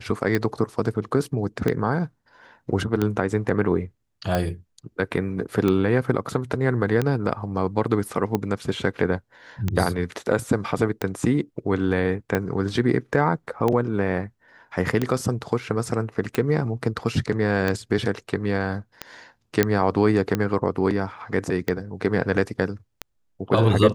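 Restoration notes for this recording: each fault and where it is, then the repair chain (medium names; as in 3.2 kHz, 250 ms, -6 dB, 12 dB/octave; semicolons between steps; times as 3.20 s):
tick 45 rpm -10 dBFS
19.63 s: pop -4 dBFS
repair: de-click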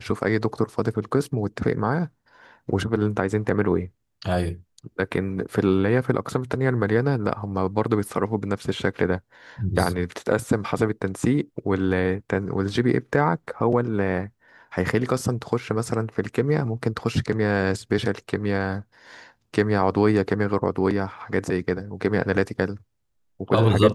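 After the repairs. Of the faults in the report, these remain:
nothing left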